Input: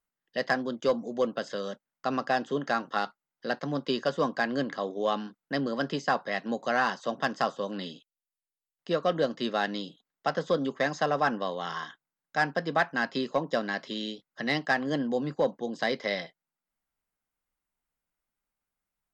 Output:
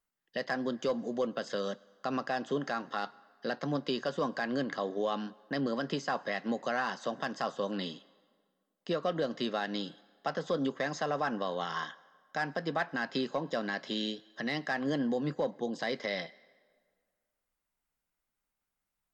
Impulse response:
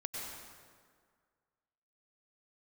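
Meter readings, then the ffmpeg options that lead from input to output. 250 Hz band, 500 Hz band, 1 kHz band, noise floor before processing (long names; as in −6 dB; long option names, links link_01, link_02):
−2.5 dB, −4.5 dB, −5.5 dB, below −85 dBFS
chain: -filter_complex "[0:a]alimiter=limit=-22.5dB:level=0:latency=1:release=115,asplit=2[link_01][link_02];[1:a]atrim=start_sample=2205,lowshelf=frequency=420:gain=-9[link_03];[link_02][link_03]afir=irnorm=-1:irlink=0,volume=-20dB[link_04];[link_01][link_04]amix=inputs=2:normalize=0"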